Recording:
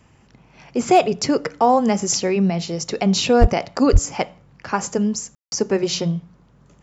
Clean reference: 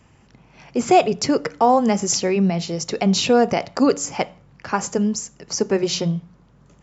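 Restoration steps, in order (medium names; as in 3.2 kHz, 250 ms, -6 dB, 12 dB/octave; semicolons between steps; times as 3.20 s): clip repair -4 dBFS; de-plosive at 3.40/3.92 s; room tone fill 5.35–5.52 s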